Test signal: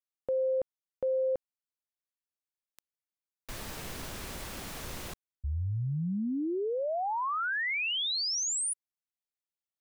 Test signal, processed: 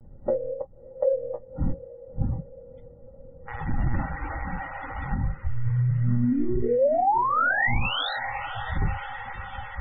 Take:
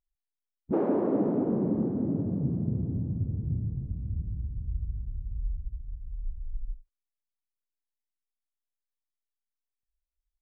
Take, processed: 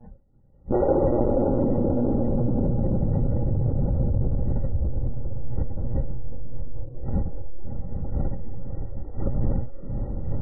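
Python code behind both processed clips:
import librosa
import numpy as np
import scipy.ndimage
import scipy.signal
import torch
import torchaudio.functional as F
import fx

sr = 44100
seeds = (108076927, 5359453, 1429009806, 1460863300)

p1 = fx.dmg_wind(x, sr, seeds[0], corner_hz=130.0, level_db=-40.0)
p2 = fx.doubler(p1, sr, ms=24.0, db=-11.5)
p3 = fx.lpc_monotone(p2, sr, seeds[1], pitch_hz=120.0, order=16)
p4 = fx.peak_eq(p3, sr, hz=1400.0, db=9.0, octaves=0.28)
p5 = fx.small_body(p4, sr, hz=(550.0, 800.0, 1900.0), ring_ms=50, db=16)
p6 = p5 + fx.echo_diffused(p5, sr, ms=607, feedback_pct=70, wet_db=-12.0, dry=0)
p7 = fx.noise_reduce_blind(p6, sr, reduce_db=14)
p8 = fx.tilt_eq(p7, sr, slope=-2.0)
p9 = fx.spec_topn(p8, sr, count=64)
p10 = fx.over_compress(p9, sr, threshold_db=-25.0, ratio=-0.5)
p11 = p9 + (p10 * librosa.db_to_amplitude(1.0))
y = p11 * librosa.db_to_amplitude(-4.0)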